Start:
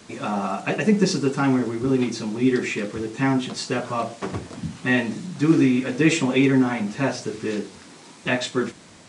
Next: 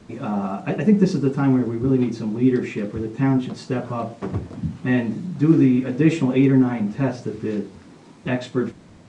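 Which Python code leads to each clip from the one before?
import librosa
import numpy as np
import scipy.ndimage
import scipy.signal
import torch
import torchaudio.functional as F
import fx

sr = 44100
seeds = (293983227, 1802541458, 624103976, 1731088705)

y = fx.tilt_eq(x, sr, slope=-3.0)
y = F.gain(torch.from_numpy(y), -3.5).numpy()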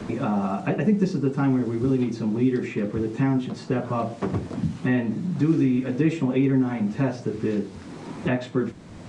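y = fx.band_squash(x, sr, depth_pct=70)
y = F.gain(torch.from_numpy(y), -3.5).numpy()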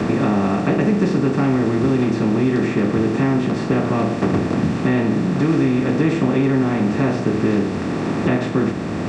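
y = fx.bin_compress(x, sr, power=0.4)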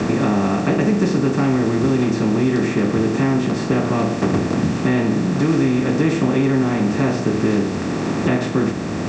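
y = fx.lowpass_res(x, sr, hz=6900.0, q=2.2)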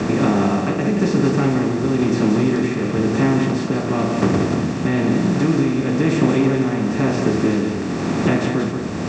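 y = fx.tremolo_shape(x, sr, shape='triangle', hz=1.0, depth_pct=45)
y = y + 10.0 ** (-6.0 / 20.0) * np.pad(y, (int(179 * sr / 1000.0), 0))[:len(y)]
y = F.gain(torch.from_numpy(y), 1.0).numpy()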